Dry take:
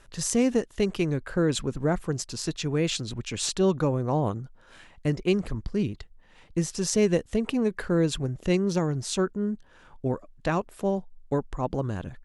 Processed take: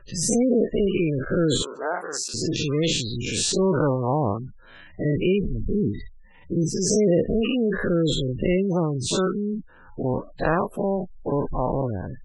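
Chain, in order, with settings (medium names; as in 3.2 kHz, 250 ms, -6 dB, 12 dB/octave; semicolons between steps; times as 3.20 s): every event in the spectrogram widened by 120 ms; 1.62–2.34 s: high-pass 670 Hz 12 dB/octave; spectral gate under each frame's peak -20 dB strong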